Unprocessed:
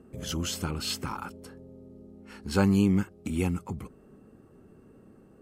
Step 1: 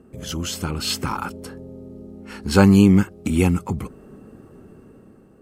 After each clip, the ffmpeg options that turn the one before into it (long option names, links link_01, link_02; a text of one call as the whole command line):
ffmpeg -i in.wav -af "dynaudnorm=framelen=200:gausssize=9:maxgain=7dB,volume=3.5dB" out.wav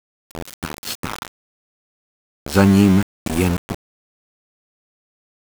ffmpeg -i in.wav -af "aeval=exprs='val(0)*gte(abs(val(0)),0.106)':channel_layout=same" out.wav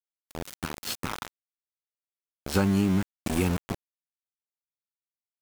ffmpeg -i in.wav -af "acompressor=threshold=-14dB:ratio=6,volume=-5.5dB" out.wav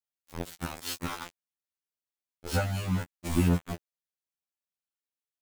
ffmpeg -i in.wav -af "afftfilt=real='re*2*eq(mod(b,4),0)':imag='im*2*eq(mod(b,4),0)':win_size=2048:overlap=0.75" out.wav